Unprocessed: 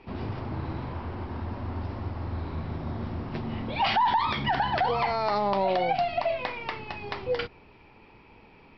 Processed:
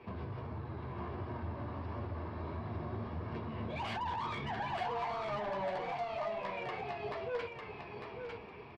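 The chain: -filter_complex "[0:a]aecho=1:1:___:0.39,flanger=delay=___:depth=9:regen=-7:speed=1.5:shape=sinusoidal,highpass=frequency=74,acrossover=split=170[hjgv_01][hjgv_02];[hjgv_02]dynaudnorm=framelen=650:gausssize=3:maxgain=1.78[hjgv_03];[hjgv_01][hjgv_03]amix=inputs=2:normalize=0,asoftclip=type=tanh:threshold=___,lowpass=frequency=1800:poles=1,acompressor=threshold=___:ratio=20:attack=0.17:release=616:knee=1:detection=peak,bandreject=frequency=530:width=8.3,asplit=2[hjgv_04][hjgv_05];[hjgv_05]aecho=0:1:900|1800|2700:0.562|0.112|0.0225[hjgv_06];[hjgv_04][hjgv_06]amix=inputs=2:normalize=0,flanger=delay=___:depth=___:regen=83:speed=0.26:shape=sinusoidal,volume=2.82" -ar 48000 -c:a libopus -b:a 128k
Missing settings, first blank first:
1.8, 8.2, 0.0562, 0.0112, 1.9, 1.6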